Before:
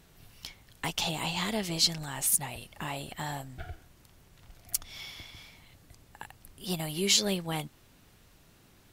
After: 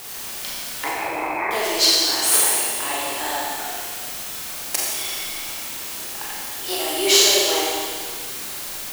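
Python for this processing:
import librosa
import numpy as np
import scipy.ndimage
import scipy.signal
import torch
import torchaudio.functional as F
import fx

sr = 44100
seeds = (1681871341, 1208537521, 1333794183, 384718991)

p1 = fx.tracing_dist(x, sr, depth_ms=0.038)
p2 = scipy.signal.sosfilt(scipy.signal.butter(8, 310.0, 'highpass', fs=sr, output='sos'), p1)
p3 = fx.quant_dither(p2, sr, seeds[0], bits=6, dither='triangular')
p4 = p2 + (p3 * librosa.db_to_amplitude(-3.5))
p5 = fx.brickwall_lowpass(p4, sr, high_hz=2600.0, at=(0.84, 1.51))
p6 = p5 + fx.room_flutter(p5, sr, wall_m=7.8, rt60_s=0.26, dry=0)
p7 = fx.rev_schroeder(p6, sr, rt60_s=1.8, comb_ms=29, drr_db=-4.5)
y = p7 * librosa.db_to_amplitude(2.0)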